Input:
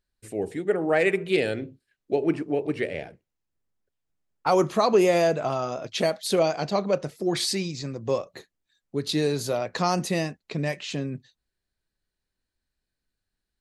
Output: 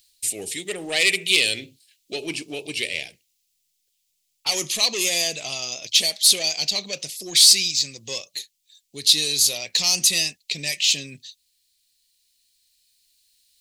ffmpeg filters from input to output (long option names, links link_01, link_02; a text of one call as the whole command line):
ffmpeg -i in.wav -filter_complex "[0:a]asettb=1/sr,asplit=3[link_01][link_02][link_03];[link_01]atrim=end=2.174[link_04];[link_02]atrim=start=2.17:end=2.85,asetpts=PTS-STARTPTS,afade=type=in:duration=0.004:curve=qsin,afade=type=out:start_time=0.676:duration=0.004:curve=qsin,bandreject=frequency=1900:width=5.8[link_05];[link_03]atrim=start=2.846[link_06];[link_04][link_05]acrossfade=duration=0.004:curve1=hsin:curve2=qsin[link_07];[link_07][link_06]acrossfade=duration=0.004:curve1=qsin:curve2=hsin,asoftclip=type=tanh:threshold=-16dB,aexciter=amount=10.4:drive=9.8:freq=2300,aeval=exprs='3.16*(cos(1*acos(clip(val(0)/3.16,-1,1)))-cos(1*PI/2))+0.0447*(cos(5*acos(clip(val(0)/3.16,-1,1)))-cos(5*PI/2))':channel_layout=same,dynaudnorm=framelen=260:gausssize=21:maxgain=11.5dB,volume=-1dB" out.wav